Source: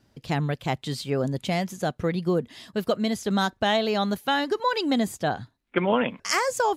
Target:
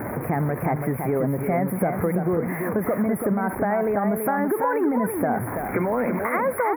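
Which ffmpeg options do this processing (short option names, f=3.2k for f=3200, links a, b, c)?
-filter_complex "[0:a]aeval=exprs='val(0)+0.5*0.0237*sgn(val(0))':c=same,highpass=f=250:p=1,acrossover=split=1200[a][b];[a]acontrast=88[c];[c][b]amix=inputs=2:normalize=0,alimiter=limit=-16dB:level=0:latency=1:release=32,acompressor=threshold=-26dB:ratio=6,asuperstop=centerf=5100:order=20:qfactor=0.64,aecho=1:1:332:0.501,volume=6dB"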